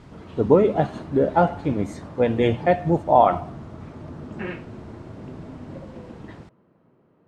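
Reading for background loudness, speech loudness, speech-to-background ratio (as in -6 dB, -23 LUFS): -39.0 LUFS, -21.0 LUFS, 18.0 dB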